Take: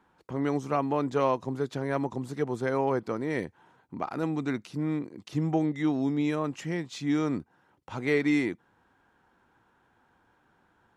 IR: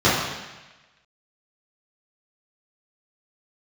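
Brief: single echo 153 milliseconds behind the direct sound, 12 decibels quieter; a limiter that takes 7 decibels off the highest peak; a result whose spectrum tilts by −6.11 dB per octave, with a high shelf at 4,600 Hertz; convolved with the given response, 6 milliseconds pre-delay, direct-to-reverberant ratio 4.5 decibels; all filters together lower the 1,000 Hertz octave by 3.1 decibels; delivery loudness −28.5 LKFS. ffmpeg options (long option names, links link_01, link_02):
-filter_complex "[0:a]equalizer=frequency=1000:width_type=o:gain=-3.5,highshelf=frequency=4600:gain=-7.5,alimiter=limit=-21.5dB:level=0:latency=1,aecho=1:1:153:0.251,asplit=2[link_01][link_02];[1:a]atrim=start_sample=2205,adelay=6[link_03];[link_02][link_03]afir=irnorm=-1:irlink=0,volume=-27dB[link_04];[link_01][link_04]amix=inputs=2:normalize=0,volume=2dB"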